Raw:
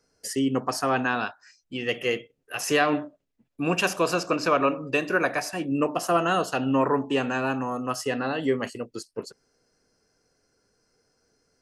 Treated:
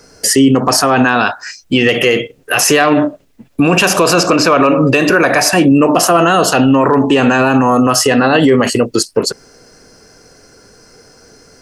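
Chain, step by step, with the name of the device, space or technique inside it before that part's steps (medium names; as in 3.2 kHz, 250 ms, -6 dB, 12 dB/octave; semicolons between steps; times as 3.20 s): loud club master (compression 2.5:1, threshold -25 dBFS, peak gain reduction 6 dB; hard clipper -17.5 dBFS, distortion -32 dB; loudness maximiser +27 dB); trim -1 dB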